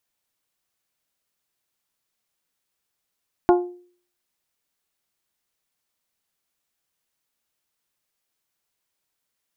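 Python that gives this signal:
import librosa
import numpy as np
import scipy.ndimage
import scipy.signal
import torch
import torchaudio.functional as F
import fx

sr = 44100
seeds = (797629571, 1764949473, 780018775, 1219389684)

y = fx.strike_glass(sr, length_s=0.89, level_db=-10.0, body='bell', hz=355.0, decay_s=0.49, tilt_db=4.5, modes=5)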